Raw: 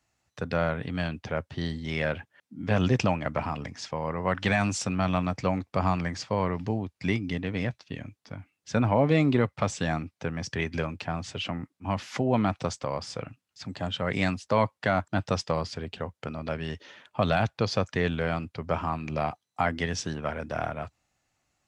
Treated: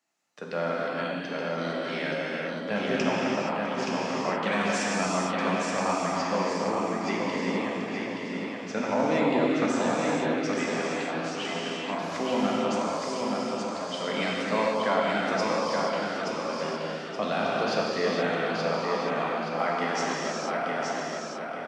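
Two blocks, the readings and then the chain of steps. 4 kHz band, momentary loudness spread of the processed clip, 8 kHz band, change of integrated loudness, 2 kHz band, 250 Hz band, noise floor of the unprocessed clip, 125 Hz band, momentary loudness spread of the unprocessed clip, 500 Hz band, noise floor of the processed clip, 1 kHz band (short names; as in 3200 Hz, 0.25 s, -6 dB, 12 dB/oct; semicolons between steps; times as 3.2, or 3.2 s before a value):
+3.0 dB, 6 LU, +3.0 dB, +1.0 dB, +2.5 dB, +0.5 dB, -83 dBFS, -9.0 dB, 12 LU, +3.0 dB, -36 dBFS, +3.0 dB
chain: HPF 210 Hz 24 dB/oct; on a send: feedback echo 0.874 s, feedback 37%, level -4 dB; on the sum: non-linear reverb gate 0.5 s flat, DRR -5 dB; gain -5 dB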